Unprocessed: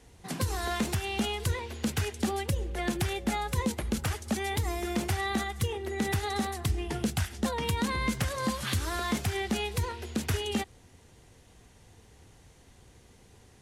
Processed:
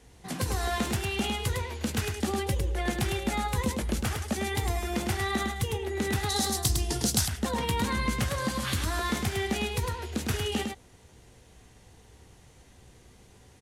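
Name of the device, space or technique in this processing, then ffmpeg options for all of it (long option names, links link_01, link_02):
slapback doubling: -filter_complex "[0:a]asplit=3[link_01][link_02][link_03];[link_02]adelay=16,volume=-9dB[link_04];[link_03]adelay=105,volume=-5dB[link_05];[link_01][link_04][link_05]amix=inputs=3:normalize=0,asettb=1/sr,asplit=3[link_06][link_07][link_08];[link_06]atrim=end=6.294[link_09];[link_07]atrim=start=6.29:end=7.28,asetpts=PTS-STARTPTS,afade=type=in:duration=0.004:curve=qsin,afade=type=out:start_time=0.986:duration=0.004:curve=qsin,highshelf=frequency=3500:width_type=q:width=1.5:gain=10[link_10];[link_08]atrim=start=7.276[link_11];[link_09][link_10]acrossfade=duration=0.004:curve1=hsin:curve2=qsin[link_12];[link_12][link_11]acrossfade=duration=0.004:curve1=qsin:curve2=hsin"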